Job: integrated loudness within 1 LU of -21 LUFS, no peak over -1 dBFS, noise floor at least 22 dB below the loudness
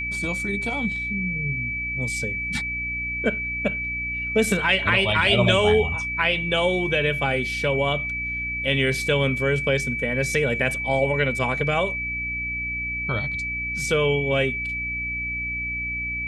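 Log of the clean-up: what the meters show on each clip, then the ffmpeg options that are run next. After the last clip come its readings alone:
hum 60 Hz; harmonics up to 300 Hz; hum level -34 dBFS; steady tone 2300 Hz; tone level -26 dBFS; loudness -22.5 LUFS; peak -5.5 dBFS; loudness target -21.0 LUFS
-> -af "bandreject=f=60:t=h:w=4,bandreject=f=120:t=h:w=4,bandreject=f=180:t=h:w=4,bandreject=f=240:t=h:w=4,bandreject=f=300:t=h:w=4"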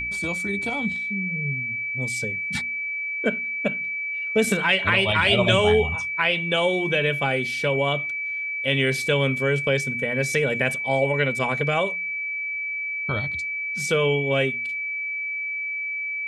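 hum none; steady tone 2300 Hz; tone level -26 dBFS
-> -af "bandreject=f=2.3k:w=30"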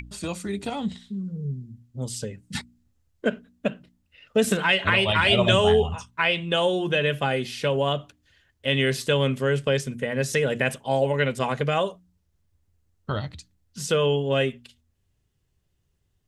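steady tone none; loudness -24.0 LUFS; peak -6.0 dBFS; loudness target -21.0 LUFS
-> -af "volume=3dB"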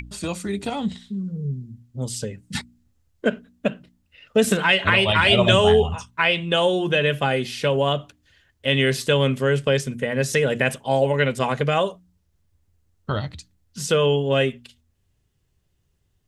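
loudness -21.5 LUFS; peak -3.0 dBFS; noise floor -68 dBFS

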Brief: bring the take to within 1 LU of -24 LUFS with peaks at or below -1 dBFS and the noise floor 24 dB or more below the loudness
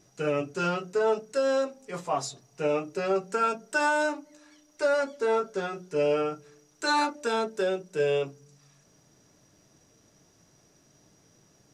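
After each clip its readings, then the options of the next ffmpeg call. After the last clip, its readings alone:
loudness -28.5 LUFS; peak -14.5 dBFS; loudness target -24.0 LUFS
-> -af "volume=4.5dB"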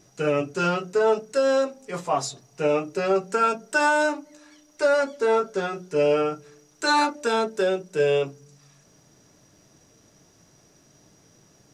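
loudness -24.0 LUFS; peak -10.0 dBFS; noise floor -58 dBFS

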